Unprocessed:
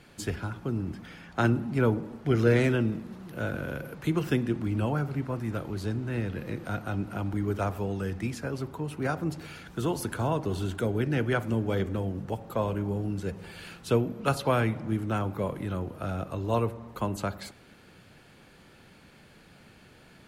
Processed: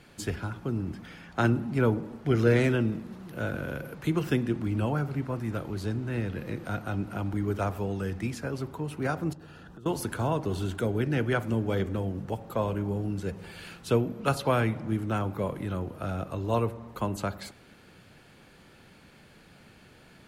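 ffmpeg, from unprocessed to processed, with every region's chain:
-filter_complex "[0:a]asettb=1/sr,asplit=3[s0][s1][s2];[s0]atrim=end=9.334[s3];[s1]atrim=start=9.33:end=9.86,asetpts=PTS-STARTPTS,afade=t=in:d=0.004:c=qsin,afade=t=out:st=0.526:d=0.004:c=qsin,highshelf=f=2600:g=-12,acompressor=threshold=0.00708:ratio=8:attack=3.2:release=140:knee=1:detection=peak,asuperstop=centerf=2200:order=4:qfactor=4.4[s4];[s2]atrim=start=9.856[s5];[s3][s4]acrossfade=d=0.004:c1=hsin:c2=qsin[s6];[s6][s5]acrossfade=d=0.004:c1=qsin:c2=hsin"

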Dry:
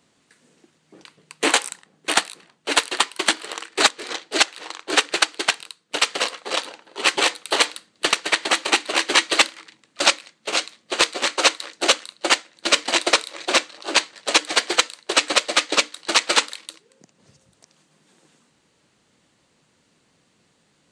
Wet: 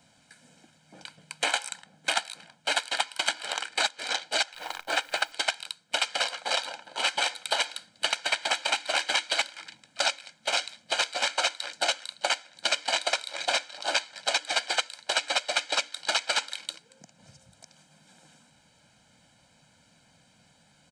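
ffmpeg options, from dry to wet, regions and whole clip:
-filter_complex "[0:a]asettb=1/sr,asplit=3[s0][s1][s2];[s0]atrim=end=4.544[s3];[s1]atrim=start=4.54:end=5.32,asetpts=PTS-STARTPTS,afade=t=in:d=0.004:c=qsin,afade=t=out:st=0.776:d=0.004:c=qsin,highpass=f=110:w=0.5412,highpass=f=110:w=1.3066,highshelf=f=3200:g=-9.5,acrusher=bits=9:dc=4:mix=0:aa=0.000001[s4];[s2]atrim=start=5.316[s5];[s3][s4]acrossfade=d=0.004:c1=hsin:c2=qsin[s6];[s6][s5]acrossfade=d=0.004:c1=qsin:c2=hsin,acompressor=threshold=0.0708:ratio=2.5,aecho=1:1:1.3:0.83,acrossover=split=460|7500[s7][s8][s9];[s7]acompressor=threshold=0.00282:ratio=4[s10];[s8]acompressor=threshold=0.0708:ratio=4[s11];[s9]acompressor=threshold=0.00631:ratio=4[s12];[s10][s11][s12]amix=inputs=3:normalize=0"

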